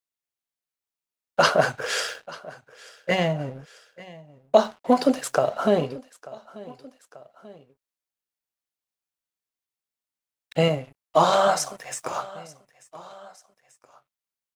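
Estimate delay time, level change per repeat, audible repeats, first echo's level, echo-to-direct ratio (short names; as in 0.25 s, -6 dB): 0.888 s, -4.5 dB, 2, -20.5 dB, -19.0 dB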